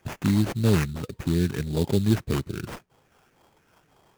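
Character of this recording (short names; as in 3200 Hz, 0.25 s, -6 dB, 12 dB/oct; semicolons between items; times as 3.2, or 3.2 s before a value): phasing stages 8, 1.8 Hz, lowest notch 710–1700 Hz; aliases and images of a low sample rate 4100 Hz, jitter 20%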